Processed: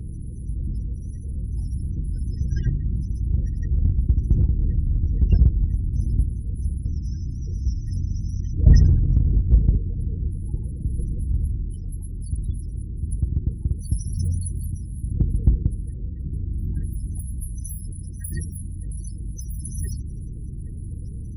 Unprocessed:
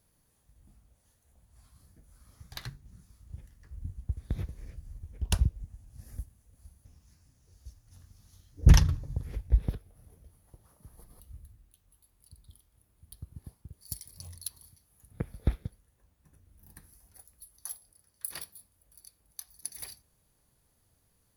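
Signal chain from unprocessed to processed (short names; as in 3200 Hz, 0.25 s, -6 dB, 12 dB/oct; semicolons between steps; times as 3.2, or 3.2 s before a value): per-bin compression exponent 0.4; thirty-one-band EQ 160 Hz -3 dB, 1000 Hz -9 dB, 8000 Hz -5 dB; added harmonics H 2 -29 dB, 4 -19 dB, 6 -16 dB, 8 -21 dB, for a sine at -4.5 dBFS; loudest bins only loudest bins 16; in parallel at -7 dB: hard clip -19.5 dBFS, distortion -8 dB; on the sum: gain +1.5 dB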